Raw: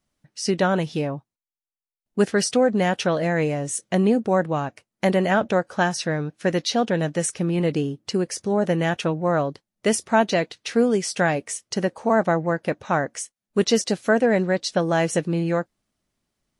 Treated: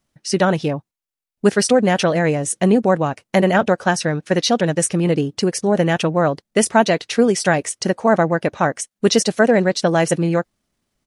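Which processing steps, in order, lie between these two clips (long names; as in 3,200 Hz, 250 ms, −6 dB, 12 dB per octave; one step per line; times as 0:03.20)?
dynamic equaliser 9,500 Hz, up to +3 dB, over −44 dBFS, Q 2.1
tempo change 1.5×
level +5 dB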